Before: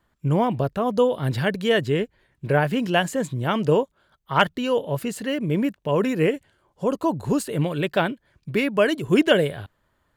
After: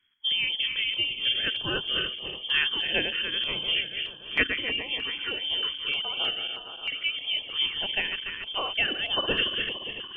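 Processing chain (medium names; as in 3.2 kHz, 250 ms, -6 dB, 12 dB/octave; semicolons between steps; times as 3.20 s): backward echo that repeats 144 ms, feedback 75%, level -7 dB; peaking EQ 390 Hz -8 dB 2.3 oct; frequency inversion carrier 3.3 kHz; step-sequenced notch 3.2 Hz 610–2100 Hz; trim -1.5 dB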